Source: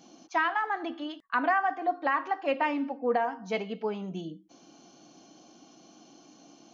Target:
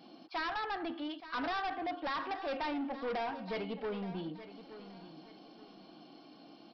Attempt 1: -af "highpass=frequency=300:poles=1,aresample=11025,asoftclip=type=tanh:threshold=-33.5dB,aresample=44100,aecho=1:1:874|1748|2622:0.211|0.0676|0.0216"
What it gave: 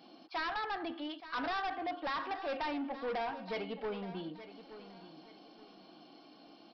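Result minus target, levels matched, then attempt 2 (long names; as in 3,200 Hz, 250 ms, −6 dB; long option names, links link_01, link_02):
125 Hz band −3.0 dB
-af "highpass=frequency=100:poles=1,aresample=11025,asoftclip=type=tanh:threshold=-33.5dB,aresample=44100,aecho=1:1:874|1748|2622:0.211|0.0676|0.0216"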